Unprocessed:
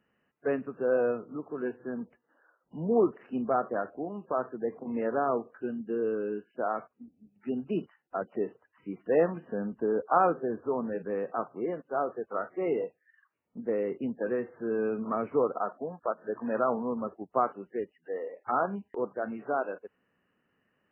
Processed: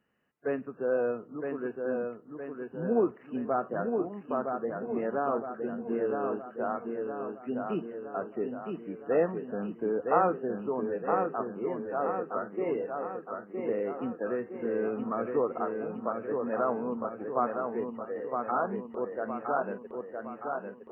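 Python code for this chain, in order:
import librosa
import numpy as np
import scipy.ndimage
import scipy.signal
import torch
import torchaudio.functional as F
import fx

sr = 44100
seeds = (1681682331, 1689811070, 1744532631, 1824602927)

y = fx.echo_feedback(x, sr, ms=964, feedback_pct=53, wet_db=-4.5)
y = y * 10.0 ** (-2.0 / 20.0)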